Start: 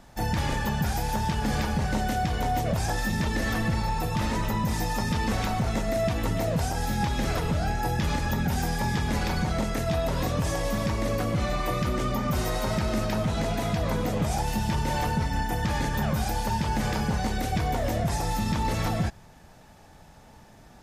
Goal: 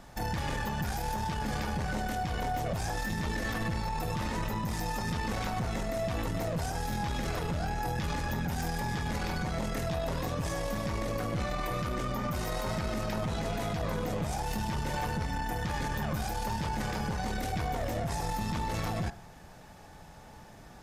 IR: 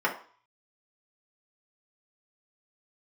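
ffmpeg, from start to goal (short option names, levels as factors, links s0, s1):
-filter_complex "[0:a]asplit=2[s0][s1];[1:a]atrim=start_sample=2205[s2];[s1][s2]afir=irnorm=-1:irlink=0,volume=0.0794[s3];[s0][s3]amix=inputs=2:normalize=0,alimiter=level_in=1.12:limit=0.0631:level=0:latency=1:release=52,volume=0.891,aeval=exprs='0.0562*(cos(1*acos(clip(val(0)/0.0562,-1,1)))-cos(1*PI/2))+0.00891*(cos(2*acos(clip(val(0)/0.0562,-1,1)))-cos(2*PI/2))+0.000562*(cos(8*acos(clip(val(0)/0.0562,-1,1)))-cos(8*PI/2))':c=same"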